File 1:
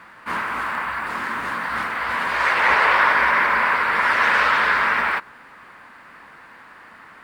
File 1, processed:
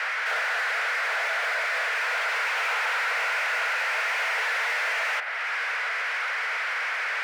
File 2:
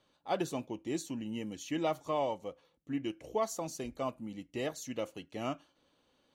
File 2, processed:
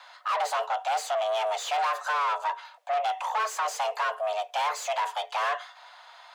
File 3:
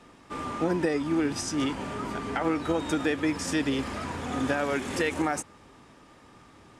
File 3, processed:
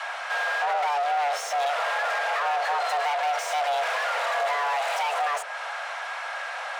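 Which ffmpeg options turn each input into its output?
-filter_complex "[0:a]acrossover=split=320[s0][s1];[s1]acompressor=threshold=0.0112:ratio=2.5[s2];[s0][s2]amix=inputs=2:normalize=0,asplit=2[s3][s4];[s4]highpass=f=720:p=1,volume=50.1,asoftclip=type=tanh:threshold=0.119[s5];[s3][s5]amix=inputs=2:normalize=0,lowpass=f=1700:p=1,volume=0.501,afreqshift=430"

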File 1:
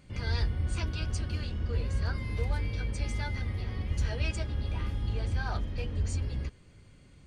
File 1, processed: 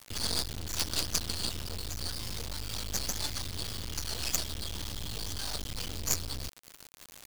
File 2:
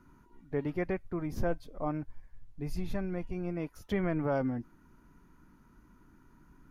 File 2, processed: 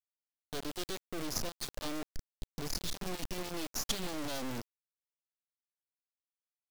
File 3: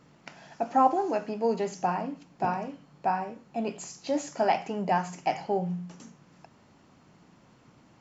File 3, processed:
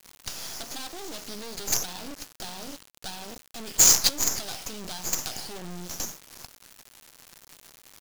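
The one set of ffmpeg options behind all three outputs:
-af "adynamicequalizer=threshold=0.00316:dfrequency=300:dqfactor=3.3:tfrequency=300:tqfactor=3.3:attack=5:release=100:ratio=0.375:range=2.5:mode=boostabove:tftype=bell,acompressor=threshold=0.0251:ratio=6,aresample=16000,asoftclip=type=tanh:threshold=0.0119,aresample=44100,aexciter=amount=11.8:drive=7.5:freq=3200,acrusher=bits=4:dc=4:mix=0:aa=0.000001,volume=1.5"

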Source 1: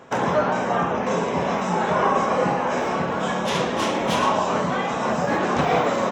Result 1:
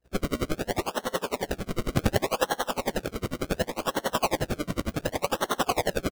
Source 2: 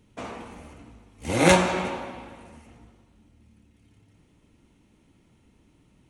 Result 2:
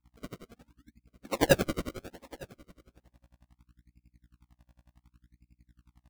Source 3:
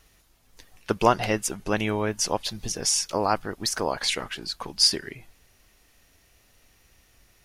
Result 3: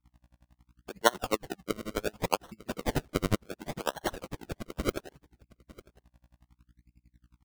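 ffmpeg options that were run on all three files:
-filter_complex "[0:a]highpass=f=140:w=0.5412,highpass=f=140:w=1.3066,afftdn=nr=35:nf=-36,acrossover=split=260[s0][s1];[s0]acompressor=threshold=0.01:ratio=10[s2];[s2][s1]amix=inputs=2:normalize=0,aeval=exprs='val(0)+0.00178*(sin(2*PI*60*n/s)+sin(2*PI*2*60*n/s)/2+sin(2*PI*3*60*n/s)/3+sin(2*PI*4*60*n/s)/4+sin(2*PI*5*60*n/s)/5)':c=same,acrusher=samples=35:mix=1:aa=0.000001:lfo=1:lforange=35:lforate=0.68,aecho=1:1:899:0.0841,aeval=exprs='val(0)*pow(10,-29*(0.5-0.5*cos(2*PI*11*n/s))/20)':c=same"

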